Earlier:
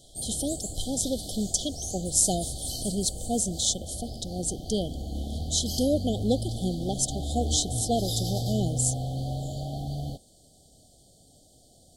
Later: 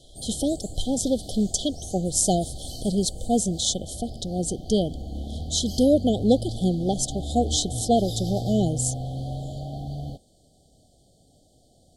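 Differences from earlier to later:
speech +6.5 dB; master: add treble shelf 4.4 kHz -9 dB

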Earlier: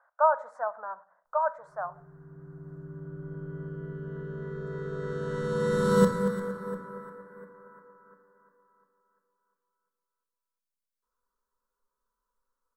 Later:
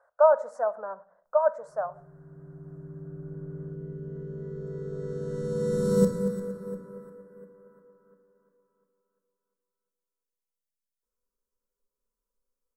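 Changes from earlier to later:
speech +11.0 dB; master: add high-order bell 1.7 kHz -13.5 dB 2.6 oct

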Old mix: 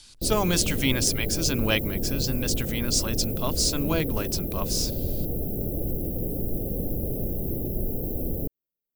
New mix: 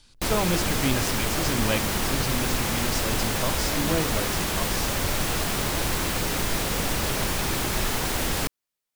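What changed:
speech: add treble shelf 3 kHz -12 dB; background: remove inverse Chebyshev band-stop 1–8.3 kHz, stop band 40 dB

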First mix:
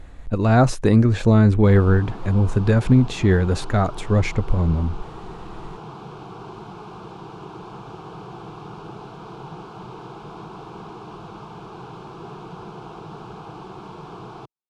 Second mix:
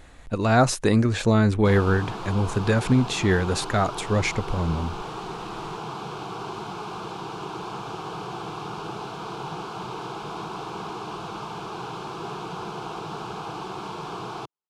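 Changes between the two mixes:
background +5.5 dB; master: add tilt EQ +2 dB/octave

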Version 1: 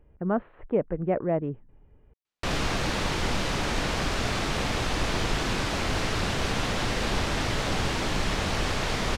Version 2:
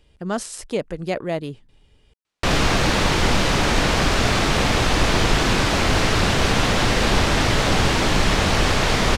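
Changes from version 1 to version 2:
speech: remove Gaussian low-pass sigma 5.4 samples; background +9.0 dB

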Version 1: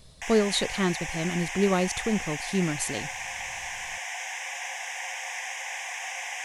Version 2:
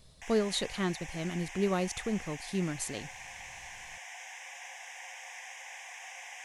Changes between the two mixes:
speech -6.0 dB; background -11.0 dB

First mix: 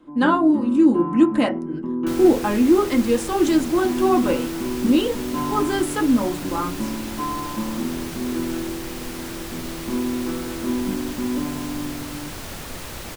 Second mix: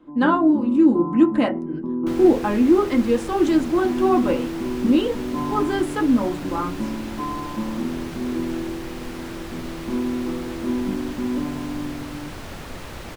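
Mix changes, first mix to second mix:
first sound: add Savitzky-Golay filter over 65 samples; master: add treble shelf 5 kHz -12 dB

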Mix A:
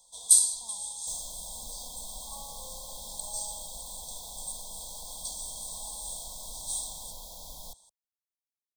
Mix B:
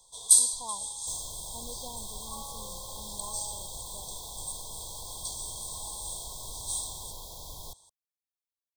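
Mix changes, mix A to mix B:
speech +12.0 dB; master: remove static phaser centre 380 Hz, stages 6

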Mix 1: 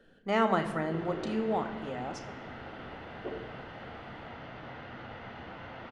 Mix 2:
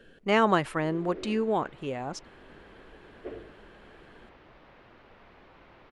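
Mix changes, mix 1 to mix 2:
speech +7.0 dB; reverb: off

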